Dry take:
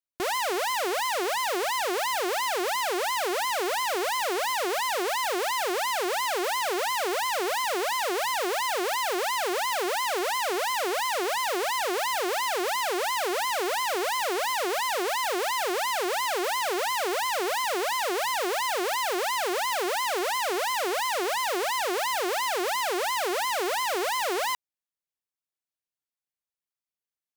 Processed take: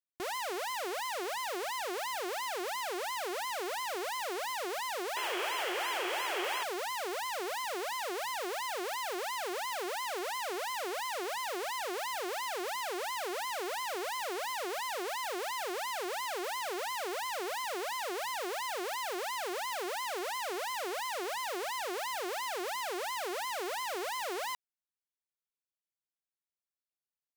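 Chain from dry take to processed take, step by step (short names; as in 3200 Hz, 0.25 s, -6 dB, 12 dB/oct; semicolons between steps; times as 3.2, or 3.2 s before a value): painted sound noise, 5.16–6.64, 320–3400 Hz -29 dBFS; gain -9 dB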